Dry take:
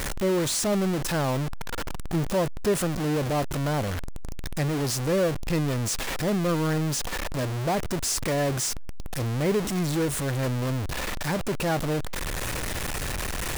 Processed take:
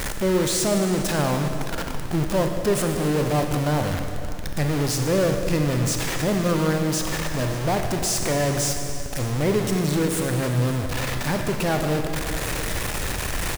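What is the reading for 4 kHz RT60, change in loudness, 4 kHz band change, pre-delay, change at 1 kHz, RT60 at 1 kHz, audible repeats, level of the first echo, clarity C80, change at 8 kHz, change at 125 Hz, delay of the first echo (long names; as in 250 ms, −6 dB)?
2.3 s, +3.5 dB, +3.5 dB, 26 ms, +3.5 dB, 2.5 s, 1, −19.0 dB, 5.5 dB, +3.5 dB, +4.0 dB, 574 ms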